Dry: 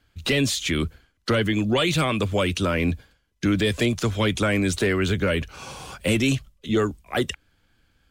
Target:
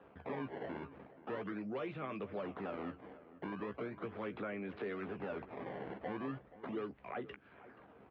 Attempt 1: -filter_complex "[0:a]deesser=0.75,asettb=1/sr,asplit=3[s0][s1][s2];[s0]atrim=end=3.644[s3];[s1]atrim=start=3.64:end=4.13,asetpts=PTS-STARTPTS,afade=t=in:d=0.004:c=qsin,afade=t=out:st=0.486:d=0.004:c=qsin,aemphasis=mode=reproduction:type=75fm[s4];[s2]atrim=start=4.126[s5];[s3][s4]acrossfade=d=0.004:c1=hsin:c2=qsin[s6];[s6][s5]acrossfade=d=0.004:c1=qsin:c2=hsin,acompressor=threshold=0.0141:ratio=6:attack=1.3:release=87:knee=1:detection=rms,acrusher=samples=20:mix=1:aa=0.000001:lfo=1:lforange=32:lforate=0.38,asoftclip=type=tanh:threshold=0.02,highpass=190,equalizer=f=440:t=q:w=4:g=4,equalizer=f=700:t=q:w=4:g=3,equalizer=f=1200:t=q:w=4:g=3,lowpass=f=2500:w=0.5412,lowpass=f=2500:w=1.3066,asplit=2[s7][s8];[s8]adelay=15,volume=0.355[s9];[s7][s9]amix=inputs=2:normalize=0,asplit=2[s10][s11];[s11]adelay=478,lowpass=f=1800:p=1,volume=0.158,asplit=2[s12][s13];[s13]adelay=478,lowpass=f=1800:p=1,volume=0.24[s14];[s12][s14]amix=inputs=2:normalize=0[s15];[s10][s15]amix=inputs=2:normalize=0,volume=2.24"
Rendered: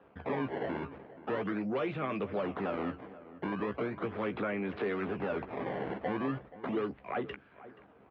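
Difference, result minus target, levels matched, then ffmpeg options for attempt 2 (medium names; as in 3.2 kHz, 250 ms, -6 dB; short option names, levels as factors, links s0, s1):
compression: peak gain reduction -9 dB
-filter_complex "[0:a]deesser=0.75,asettb=1/sr,asplit=3[s0][s1][s2];[s0]atrim=end=3.644[s3];[s1]atrim=start=3.64:end=4.13,asetpts=PTS-STARTPTS,afade=t=in:d=0.004:c=qsin,afade=t=out:st=0.486:d=0.004:c=qsin,aemphasis=mode=reproduction:type=75fm[s4];[s2]atrim=start=4.126[s5];[s3][s4]acrossfade=d=0.004:c1=hsin:c2=qsin[s6];[s6][s5]acrossfade=d=0.004:c1=qsin:c2=hsin,acompressor=threshold=0.00398:ratio=6:attack=1.3:release=87:knee=1:detection=rms,acrusher=samples=20:mix=1:aa=0.000001:lfo=1:lforange=32:lforate=0.38,asoftclip=type=tanh:threshold=0.02,highpass=190,equalizer=f=440:t=q:w=4:g=4,equalizer=f=700:t=q:w=4:g=3,equalizer=f=1200:t=q:w=4:g=3,lowpass=f=2500:w=0.5412,lowpass=f=2500:w=1.3066,asplit=2[s7][s8];[s8]adelay=15,volume=0.355[s9];[s7][s9]amix=inputs=2:normalize=0,asplit=2[s10][s11];[s11]adelay=478,lowpass=f=1800:p=1,volume=0.158,asplit=2[s12][s13];[s13]adelay=478,lowpass=f=1800:p=1,volume=0.24[s14];[s12][s14]amix=inputs=2:normalize=0[s15];[s10][s15]amix=inputs=2:normalize=0,volume=2.24"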